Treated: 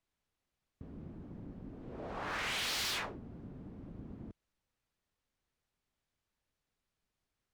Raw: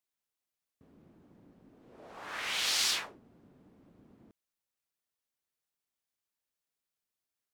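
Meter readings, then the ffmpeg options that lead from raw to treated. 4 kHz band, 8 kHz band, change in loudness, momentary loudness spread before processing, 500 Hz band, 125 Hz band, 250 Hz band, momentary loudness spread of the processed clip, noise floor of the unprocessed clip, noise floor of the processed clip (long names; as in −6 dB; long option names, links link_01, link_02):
−6.0 dB, −8.0 dB, −9.5 dB, 20 LU, +4.5 dB, +13.5 dB, +9.5 dB, 17 LU, below −85 dBFS, below −85 dBFS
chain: -filter_complex "[0:a]aemphasis=mode=reproduction:type=bsi,asplit=2[link_01][link_02];[link_02]acompressor=threshold=-45dB:ratio=6,volume=-3dB[link_03];[link_01][link_03]amix=inputs=2:normalize=0,asoftclip=type=hard:threshold=-36dB,volume=2dB"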